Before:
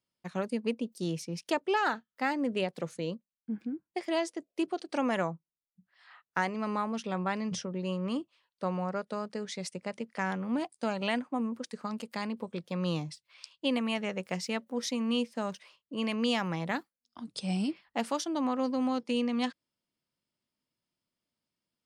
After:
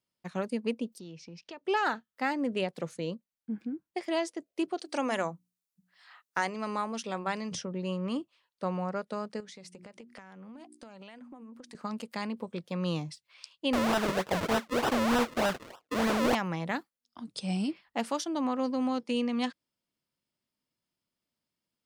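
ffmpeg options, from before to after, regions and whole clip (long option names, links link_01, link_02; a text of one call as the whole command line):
ffmpeg -i in.wav -filter_complex "[0:a]asettb=1/sr,asplit=3[link_01][link_02][link_03];[link_01]atrim=end=0.994[link_04];[link_02]atrim=start=0.99:end=1.65,asetpts=PTS-STARTPTS,afade=type=in:duration=0.004:curve=qsin,afade=type=out:start_time=0.656:duration=0.004:curve=qsin,lowpass=frequency=5500:width=0.5412,lowpass=frequency=5500:width=1.3066,equalizer=frequency=2600:width_type=o:width=0.22:gain=4.5,acompressor=threshold=-46dB:ratio=3:attack=3.2:release=140:knee=1:detection=peak[link_05];[link_03]atrim=start=1.646[link_06];[link_04][link_05]acrossfade=duration=0.004:curve1=hsin:curve2=qsin[link_07];[link_07][link_06]acrossfade=duration=0.004:curve1=qsin:curve2=hsin,asettb=1/sr,asplit=3[link_08][link_09][link_10];[link_08]atrim=end=4.794[link_11];[link_09]atrim=start=4.79:end=7.55,asetpts=PTS-STARTPTS,afade=type=in:duration=0.004:curve=qsin,afade=type=out:start_time=2.756:duration=0.004:curve=qsin,bass=frequency=250:gain=-5,treble=frequency=4000:gain=7,bandreject=frequency=60:width_type=h:width=6,bandreject=frequency=120:width_type=h:width=6,bandreject=frequency=180:width_type=h:width=6,bandreject=frequency=240:width_type=h:width=6,bandreject=frequency=300:width_type=h:width=6[link_12];[link_10]atrim=start=7.546[link_13];[link_11][link_12]acrossfade=duration=0.004:curve1=hsin:curve2=qsin[link_14];[link_14][link_13]acrossfade=duration=0.004:curve1=qsin:curve2=hsin,asettb=1/sr,asplit=3[link_15][link_16][link_17];[link_15]atrim=end=9.404[link_18];[link_16]atrim=start=9.4:end=11.75,asetpts=PTS-STARTPTS,afade=type=in:duration=0.004:curve=qsin,afade=type=out:start_time=2.346:duration=0.004:curve=qsin,bandreject=frequency=60:width_type=h:width=6,bandreject=frequency=120:width_type=h:width=6,bandreject=frequency=180:width_type=h:width=6,bandreject=frequency=240:width_type=h:width=6,bandreject=frequency=300:width_type=h:width=6,bandreject=frequency=360:width_type=h:width=6,acompressor=threshold=-44dB:ratio=16:attack=3.2:release=140:knee=1:detection=peak[link_19];[link_17]atrim=start=11.746[link_20];[link_18][link_19]acrossfade=duration=0.004:curve1=hsin:curve2=qsin[link_21];[link_21][link_20]acrossfade=duration=0.004:curve1=qsin:curve2=hsin,asettb=1/sr,asplit=3[link_22][link_23][link_24];[link_22]atrim=end=13.734[link_25];[link_23]atrim=start=13.73:end=16.35,asetpts=PTS-STARTPTS,afade=type=in:duration=0.004:curve=qsin,afade=type=out:start_time=2.616:duration=0.004:curve=qsin,acrusher=samples=39:mix=1:aa=0.000001:lfo=1:lforange=39:lforate=3.3,asplit=2[link_26][link_27];[link_27]highpass=frequency=720:poles=1,volume=23dB,asoftclip=type=tanh:threshold=-17dB[link_28];[link_26][link_28]amix=inputs=2:normalize=0,lowpass=frequency=4800:poles=1,volume=-6dB[link_29];[link_24]atrim=start=16.346[link_30];[link_25][link_29]acrossfade=duration=0.004:curve1=hsin:curve2=qsin[link_31];[link_31][link_30]acrossfade=duration=0.004:curve1=qsin:curve2=hsin" out.wav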